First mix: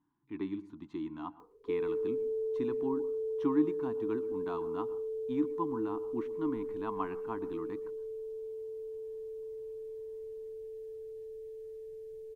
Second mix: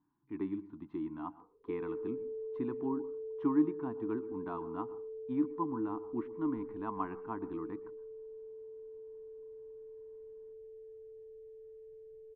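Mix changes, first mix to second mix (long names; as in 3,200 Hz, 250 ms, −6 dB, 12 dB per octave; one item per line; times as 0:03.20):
background −7.0 dB
master: add low-pass filter 1,800 Hz 12 dB per octave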